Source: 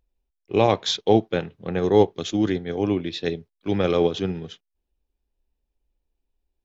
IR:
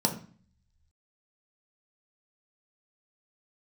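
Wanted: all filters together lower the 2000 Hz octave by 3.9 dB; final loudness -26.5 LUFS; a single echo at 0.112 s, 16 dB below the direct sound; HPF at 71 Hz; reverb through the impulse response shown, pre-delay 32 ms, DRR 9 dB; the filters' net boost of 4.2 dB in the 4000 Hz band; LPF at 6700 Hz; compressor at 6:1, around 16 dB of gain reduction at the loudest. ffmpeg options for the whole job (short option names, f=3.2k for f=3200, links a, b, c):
-filter_complex "[0:a]highpass=71,lowpass=6.7k,equalizer=f=2k:t=o:g=-7.5,equalizer=f=4k:t=o:g=7.5,acompressor=threshold=-29dB:ratio=6,aecho=1:1:112:0.158,asplit=2[a][b];[1:a]atrim=start_sample=2205,adelay=32[c];[b][c]afir=irnorm=-1:irlink=0,volume=-18dB[d];[a][d]amix=inputs=2:normalize=0,volume=6dB"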